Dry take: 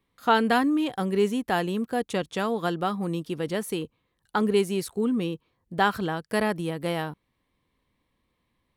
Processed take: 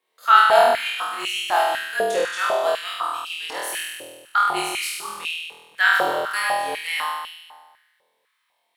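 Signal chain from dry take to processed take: octave divider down 1 oct, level -2 dB; treble shelf 2.3 kHz +8.5 dB; flutter echo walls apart 4.2 m, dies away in 1.3 s; frequency shift -45 Hz; step-sequenced high-pass 4 Hz 540–2700 Hz; trim -5 dB

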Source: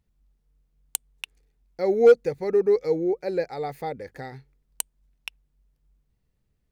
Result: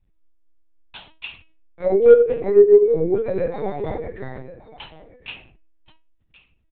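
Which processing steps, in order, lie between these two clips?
high-pass 43 Hz 12 dB/octave; on a send: delay 1075 ms -18 dB; on the sum: simulated room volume 35 m³, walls mixed, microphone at 2.8 m; LPC vocoder at 8 kHz pitch kept; trim -9.5 dB

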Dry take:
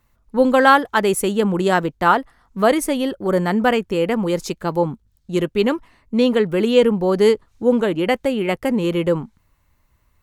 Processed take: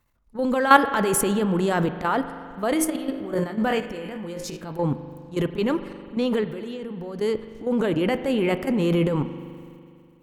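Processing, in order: 2.73–4.71 s: feedback comb 53 Hz, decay 0.32 s, harmonics all, mix 70%; 6.41–7.19 s: compression 2.5:1, threshold -30 dBFS, peak gain reduction 14 dB; transient shaper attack -11 dB, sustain +6 dB; level held to a coarse grid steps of 12 dB; spring tank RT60 2.4 s, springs 41 ms, chirp 30 ms, DRR 10.5 dB; trim +2 dB

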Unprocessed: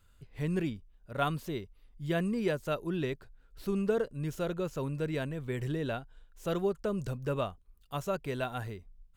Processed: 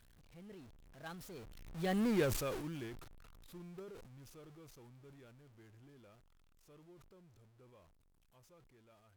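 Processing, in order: jump at every zero crossing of -32 dBFS; Doppler pass-by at 2.09 s, 44 m/s, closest 8.2 m; in parallel at -12 dB: bit crusher 6-bit; on the sum: decay stretcher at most 50 dB/s; trim -5.5 dB

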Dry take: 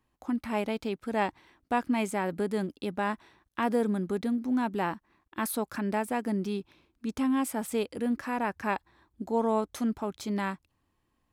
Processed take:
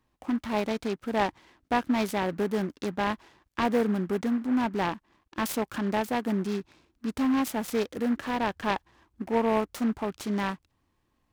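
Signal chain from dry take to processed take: delay time shaken by noise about 1.2 kHz, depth 0.051 ms; trim +2 dB

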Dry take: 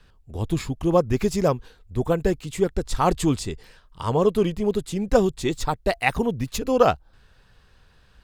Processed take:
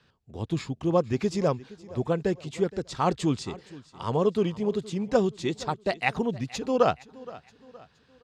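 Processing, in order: Chebyshev band-pass 130–5500 Hz, order 2; on a send: feedback delay 469 ms, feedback 43%, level -19.5 dB; on the sum: trim -3.5 dB

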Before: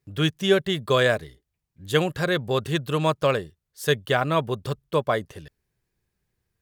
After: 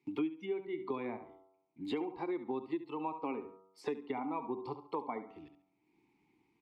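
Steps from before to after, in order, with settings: spectral noise reduction 15 dB; de-hum 95.12 Hz, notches 15; in parallel at +3 dB: compression, threshold -29 dBFS, peak gain reduction 14 dB; on the sum: low-pass that closes with the level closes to 1.6 kHz, closed at -19 dBFS; vowel filter u; peaking EQ 75 Hz -10 dB 1.1 oct; on a send: feedback delay 69 ms, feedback 22%, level -13 dB; on the sum: dynamic bell 1.2 kHz, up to -4 dB, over -49 dBFS, Q 1.7; three bands compressed up and down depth 100%

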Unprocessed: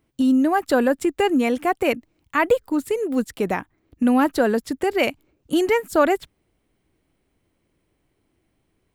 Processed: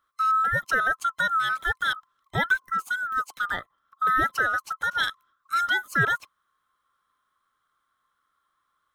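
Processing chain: split-band scrambler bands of 1 kHz; trim -5.5 dB

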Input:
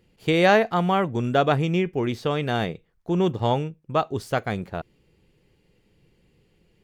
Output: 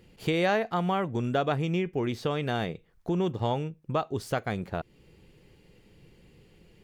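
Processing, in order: compression 2:1, threshold -39 dBFS, peak gain reduction 14.5 dB; trim +5.5 dB

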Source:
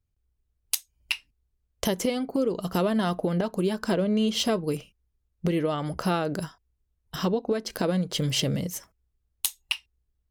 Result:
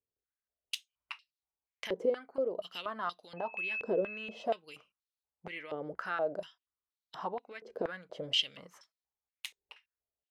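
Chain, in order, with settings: 3.36–4.44 s: whistle 2.6 kHz -30 dBFS; step-sequenced band-pass 4.2 Hz 460–4100 Hz; trim +1.5 dB

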